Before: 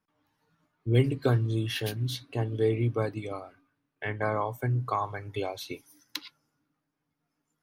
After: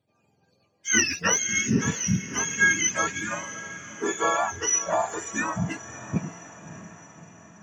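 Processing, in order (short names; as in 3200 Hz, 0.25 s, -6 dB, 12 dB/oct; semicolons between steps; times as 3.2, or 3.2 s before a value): spectrum mirrored in octaves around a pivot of 850 Hz; on a send: diffused feedback echo 0.611 s, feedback 56%, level -14 dB; on the sum: gain +7 dB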